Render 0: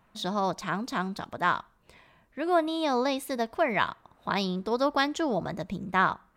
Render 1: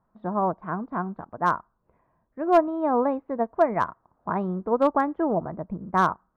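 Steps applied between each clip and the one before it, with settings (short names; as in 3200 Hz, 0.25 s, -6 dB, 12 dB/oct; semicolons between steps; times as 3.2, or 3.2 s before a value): LPF 1300 Hz 24 dB/oct; overloaded stage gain 17 dB; upward expander 1.5:1, over -48 dBFS; gain +7 dB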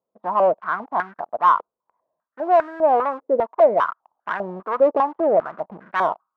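sample leveller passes 3; stepped band-pass 5 Hz 490–1600 Hz; gain +5.5 dB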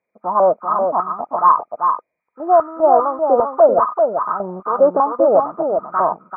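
nonlinear frequency compression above 1200 Hz 4:1; spectral gain 1.66–2.49, 530–1500 Hz -7 dB; echo 0.389 s -5 dB; gain +3.5 dB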